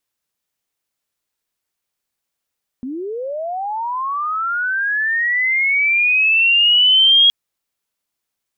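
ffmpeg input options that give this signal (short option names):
-f lavfi -i "aevalsrc='pow(10,(-23.5+16*t/4.47)/20)*sin(2*PI*(240*t+3060*t*t/(2*4.47)))':d=4.47:s=44100"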